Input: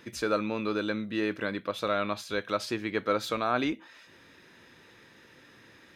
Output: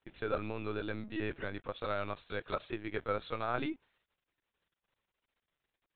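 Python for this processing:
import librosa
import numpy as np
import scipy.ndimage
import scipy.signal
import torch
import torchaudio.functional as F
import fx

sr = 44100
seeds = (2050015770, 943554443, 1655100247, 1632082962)

y = np.sign(x) * np.maximum(np.abs(x) - 10.0 ** (-49.0 / 20.0), 0.0)
y = fx.lpc_vocoder(y, sr, seeds[0], excitation='pitch_kept', order=16)
y = F.gain(torch.from_numpy(y), -6.5).numpy()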